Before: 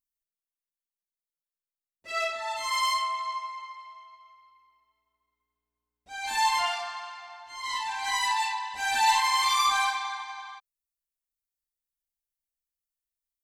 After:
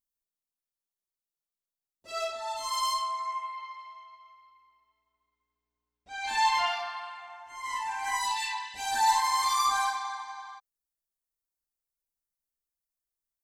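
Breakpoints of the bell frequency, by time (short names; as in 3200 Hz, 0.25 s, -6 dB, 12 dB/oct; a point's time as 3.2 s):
bell -14 dB 0.79 oct
3.09 s 2100 Hz
3.8 s 12000 Hz
6.42 s 12000 Hz
7.58 s 3800 Hz
8.16 s 3800 Hz
8.56 s 480 Hz
8.97 s 2700 Hz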